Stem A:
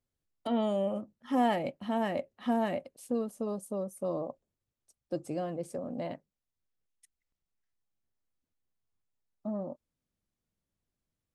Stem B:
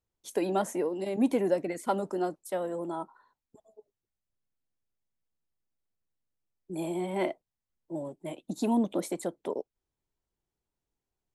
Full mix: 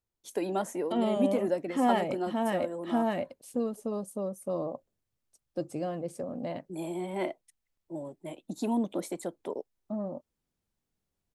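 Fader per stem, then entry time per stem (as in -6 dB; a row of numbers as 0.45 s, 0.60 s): +1.0 dB, -2.5 dB; 0.45 s, 0.00 s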